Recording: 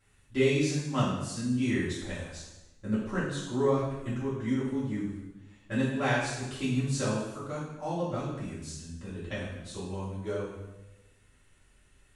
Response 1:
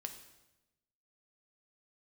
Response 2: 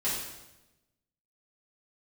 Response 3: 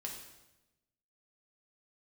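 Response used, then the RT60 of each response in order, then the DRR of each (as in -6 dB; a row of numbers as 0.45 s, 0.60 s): 2; 1.0 s, 1.0 s, 1.0 s; 5.5 dB, -10.5 dB, -0.5 dB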